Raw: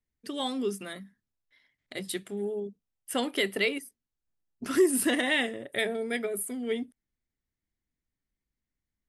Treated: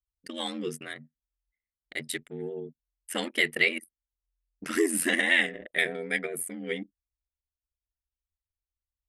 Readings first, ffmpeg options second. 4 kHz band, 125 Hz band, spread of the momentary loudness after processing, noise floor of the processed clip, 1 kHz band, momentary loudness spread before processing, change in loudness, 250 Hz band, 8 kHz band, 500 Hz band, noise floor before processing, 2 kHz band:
+1.0 dB, n/a, 18 LU, under -85 dBFS, -3.0 dB, 16 LU, +1.5 dB, -3.5 dB, +0.5 dB, -3.5 dB, under -85 dBFS, +5.5 dB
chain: -af "anlmdn=0.1,equalizer=f=125:t=o:w=1:g=-4,equalizer=f=1k:t=o:w=1:g=-3,equalizer=f=2k:t=o:w=1:g=10,equalizer=f=8k:t=o:w=1:g=4,aeval=exprs='val(0)*sin(2*PI*43*n/s)':c=same"

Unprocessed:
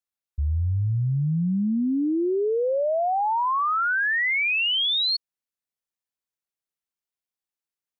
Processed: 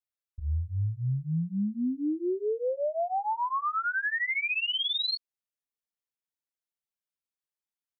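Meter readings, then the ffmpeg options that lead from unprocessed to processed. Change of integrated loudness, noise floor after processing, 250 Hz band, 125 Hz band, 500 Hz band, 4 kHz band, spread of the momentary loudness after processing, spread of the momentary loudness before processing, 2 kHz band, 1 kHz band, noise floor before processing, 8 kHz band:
-6.5 dB, under -85 dBFS, -6.5 dB, -6.5 dB, -6.5 dB, -6.5 dB, 6 LU, 5 LU, -6.5 dB, -6.5 dB, under -85 dBFS, n/a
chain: -filter_complex "[0:a]asplit=2[a][b];[b]adelay=5.7,afreqshift=-2.6[c];[a][c]amix=inputs=2:normalize=1,volume=-3.5dB"

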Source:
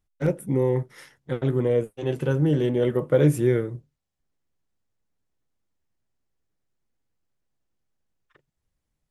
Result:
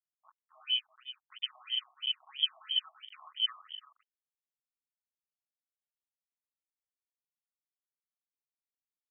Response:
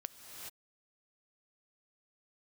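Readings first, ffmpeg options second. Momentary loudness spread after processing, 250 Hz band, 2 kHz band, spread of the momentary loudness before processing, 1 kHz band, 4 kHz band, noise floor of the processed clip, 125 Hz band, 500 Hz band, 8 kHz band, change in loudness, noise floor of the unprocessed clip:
15 LU, under -40 dB, -9.5 dB, 11 LU, -14.0 dB, +16.5 dB, under -85 dBFS, under -40 dB, under -40 dB, under -30 dB, -9.5 dB, -81 dBFS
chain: -filter_complex "[0:a]bandreject=f=60:t=h:w=6,bandreject=f=120:t=h:w=6,bandreject=f=180:t=h:w=6,aecho=1:1:5.2:0.93,dynaudnorm=f=110:g=9:m=11.5dB,asplit=3[a][b][c];[a]bandpass=f=300:t=q:w=8,volume=0dB[d];[b]bandpass=f=870:t=q:w=8,volume=-6dB[e];[c]bandpass=f=2.24k:t=q:w=8,volume=-9dB[f];[d][e][f]amix=inputs=3:normalize=0,lowpass=f=2.9k:t=q:w=0.5098,lowpass=f=2.9k:t=q:w=0.6013,lowpass=f=2.9k:t=q:w=0.9,lowpass=f=2.9k:t=q:w=2.563,afreqshift=-3400,aeval=exprs='0.447*(cos(1*acos(clip(val(0)/0.447,-1,1)))-cos(1*PI/2))+0.0562*(cos(3*acos(clip(val(0)/0.447,-1,1)))-cos(3*PI/2))+0.0224*(cos(5*acos(clip(val(0)/0.447,-1,1)))-cos(5*PI/2))+0.141*(cos(6*acos(clip(val(0)/0.447,-1,1)))-cos(6*PI/2))+0.0631*(cos(8*acos(clip(val(0)/0.447,-1,1)))-cos(8*PI/2))':c=same,asplit=2[g][h];[h]adelay=93,lowpass=f=1.6k:p=1,volume=-7dB,asplit=2[i][j];[j]adelay=93,lowpass=f=1.6k:p=1,volume=0.3,asplit=2[k][l];[l]adelay=93,lowpass=f=1.6k:p=1,volume=0.3,asplit=2[m][n];[n]adelay=93,lowpass=f=1.6k:p=1,volume=0.3[o];[g][i][k][m][o]amix=inputs=5:normalize=0,asplit=2[p][q];[1:a]atrim=start_sample=2205[r];[q][r]afir=irnorm=-1:irlink=0,volume=4.5dB[s];[p][s]amix=inputs=2:normalize=0,aeval=exprs='sgn(val(0))*max(abs(val(0))-0.0447,0)':c=same,afftfilt=real='re*between(b*sr/1024,860*pow(2600/860,0.5+0.5*sin(2*PI*3*pts/sr))/1.41,860*pow(2600/860,0.5+0.5*sin(2*PI*3*pts/sr))*1.41)':imag='im*between(b*sr/1024,860*pow(2600/860,0.5+0.5*sin(2*PI*3*pts/sr))/1.41,860*pow(2600/860,0.5+0.5*sin(2*PI*3*pts/sr))*1.41)':win_size=1024:overlap=0.75,volume=-4dB"

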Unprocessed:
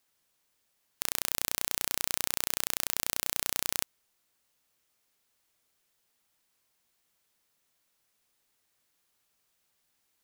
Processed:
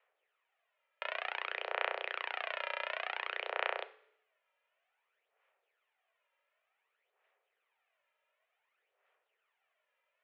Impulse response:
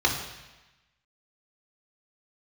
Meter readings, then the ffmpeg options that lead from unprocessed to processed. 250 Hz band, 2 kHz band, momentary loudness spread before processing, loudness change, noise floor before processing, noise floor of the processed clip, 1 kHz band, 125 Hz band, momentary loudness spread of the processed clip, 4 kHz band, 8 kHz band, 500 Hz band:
under -15 dB, +3.0 dB, 3 LU, -7.5 dB, -76 dBFS, -84 dBFS, +3.5 dB, under -40 dB, 5 LU, -7.5 dB, under -40 dB, +5.0 dB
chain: -filter_complex "[0:a]aeval=exprs='0.891*(cos(1*acos(clip(val(0)/0.891,-1,1)))-cos(1*PI/2))+0.398*(cos(3*acos(clip(val(0)/0.891,-1,1)))-cos(3*PI/2))+0.1*(cos(7*acos(clip(val(0)/0.891,-1,1)))-cos(7*PI/2))':c=same,aphaser=in_gain=1:out_gain=1:delay=2.8:decay=0.6:speed=0.55:type=sinusoidal,asplit=2[a][b];[1:a]atrim=start_sample=2205,asetrate=70560,aresample=44100[c];[b][c]afir=irnorm=-1:irlink=0,volume=-19.5dB[d];[a][d]amix=inputs=2:normalize=0,highpass=f=220:t=q:w=0.5412,highpass=f=220:t=q:w=1.307,lowpass=f=2.5k:t=q:w=0.5176,lowpass=f=2.5k:t=q:w=0.7071,lowpass=f=2.5k:t=q:w=1.932,afreqshift=220"

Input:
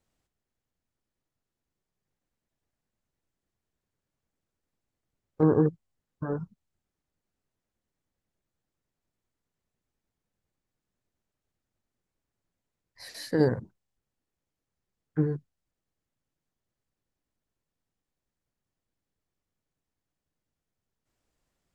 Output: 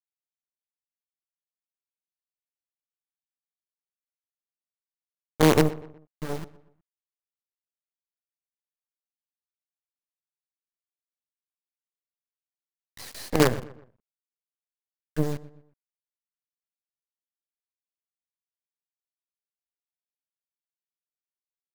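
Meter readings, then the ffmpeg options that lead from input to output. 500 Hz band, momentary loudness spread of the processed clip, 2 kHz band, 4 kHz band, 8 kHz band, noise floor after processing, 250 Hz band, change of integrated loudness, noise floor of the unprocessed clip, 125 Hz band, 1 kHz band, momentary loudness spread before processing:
+2.5 dB, 21 LU, +10.5 dB, +11.5 dB, +15.0 dB, under -85 dBFS, +1.5 dB, +3.0 dB, under -85 dBFS, +1.0 dB, +9.0 dB, 17 LU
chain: -filter_complex "[0:a]acompressor=mode=upward:threshold=-37dB:ratio=2.5,acrusher=bits=4:dc=4:mix=0:aa=0.000001,asplit=2[a][b];[b]adelay=122,lowpass=f=2.6k:p=1,volume=-18dB,asplit=2[c][d];[d]adelay=122,lowpass=f=2.6k:p=1,volume=0.41,asplit=2[e][f];[f]adelay=122,lowpass=f=2.6k:p=1,volume=0.41[g];[a][c][e][g]amix=inputs=4:normalize=0,volume=3dB"

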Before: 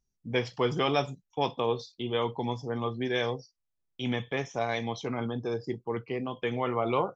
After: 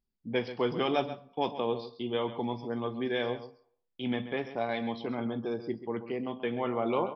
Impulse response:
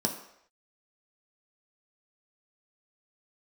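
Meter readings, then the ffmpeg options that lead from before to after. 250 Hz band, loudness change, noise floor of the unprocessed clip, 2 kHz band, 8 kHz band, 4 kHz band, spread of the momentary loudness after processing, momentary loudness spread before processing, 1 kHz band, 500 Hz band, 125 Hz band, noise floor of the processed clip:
+0.5 dB, -1.5 dB, -81 dBFS, -3.5 dB, n/a, -4.0 dB, 6 LU, 6 LU, -2.5 dB, -1.5 dB, -6.5 dB, -81 dBFS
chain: -filter_complex "[0:a]asplit=2[a][b];[b]adelay=134.1,volume=-12dB,highshelf=f=4k:g=-3.02[c];[a][c]amix=inputs=2:normalize=0,asplit=2[d][e];[1:a]atrim=start_sample=2205,lowpass=4.2k[f];[e][f]afir=irnorm=-1:irlink=0,volume=-17.5dB[g];[d][g]amix=inputs=2:normalize=0,aresample=11025,aresample=44100,volume=-4dB"

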